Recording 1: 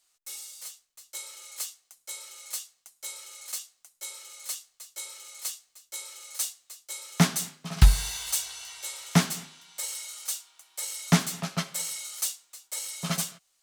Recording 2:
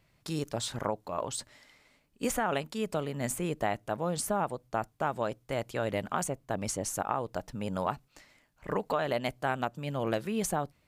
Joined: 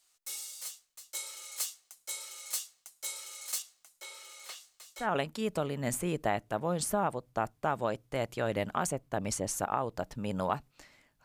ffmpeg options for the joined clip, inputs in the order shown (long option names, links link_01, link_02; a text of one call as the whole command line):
ffmpeg -i cue0.wav -i cue1.wav -filter_complex "[0:a]asettb=1/sr,asplit=3[link_01][link_02][link_03];[link_01]atrim=end=3.624[link_04];[link_02]atrim=start=3.62:end=5.08,asetpts=PTS-STARTPTS,afade=type=in:duration=0.004:curve=qsin,afade=type=out:start_time=1.456:duration=0.004:curve=qsin,acrossover=split=4000[link_05][link_06];[link_06]acompressor=threshold=-50dB:ratio=4:attack=1:release=60[link_07];[link_05][link_07]amix=inputs=2:normalize=0[link_08];[link_03]atrim=start=5.076[link_09];[link_04][link_08]acrossfade=duration=0.004:curve1=hsin:curve2=qsin[link_10];[link_10][link_09]acrossfade=duration=0.004:curve1=qsin:curve2=hsin,apad=whole_dur=11.24,atrim=end=11.24,atrim=end=5.08,asetpts=PTS-STARTPTS[link_11];[1:a]atrim=start=2.35:end=8.61,asetpts=PTS-STARTPTS[link_12];[link_11][link_12]acrossfade=duration=0.1:curve1=tri:curve2=tri" out.wav